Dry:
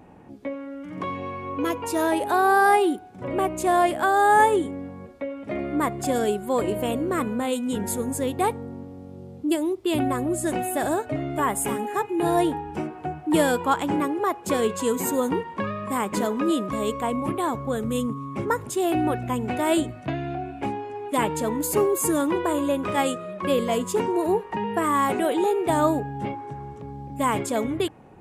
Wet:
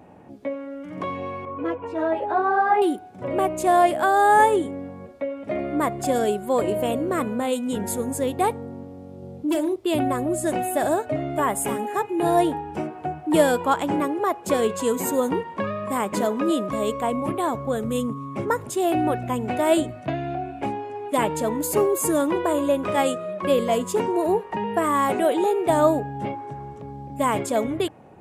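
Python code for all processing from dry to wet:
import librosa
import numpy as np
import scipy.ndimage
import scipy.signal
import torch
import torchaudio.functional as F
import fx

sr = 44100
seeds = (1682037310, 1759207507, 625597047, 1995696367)

y = fx.chain(x, sr, fx.lowpass(hz=2000.0, slope=12),
    fx.ensemble(), at=(1.45, 2.82))
y = fx.chain(y, sr, fx.doubler(ms=43.0, db=-9.5),
    fx.clip_hard(threshold_db=-18.5), at=(9.18, 9.76))
y = scipy.signal.sosfilt(scipy.signal.butter(2, 62.0, 'highpass', fs=sr, output='sos'), y)
y = fx.peak_eq(y, sr, hz=620.0, db=5.5, octaves=0.49)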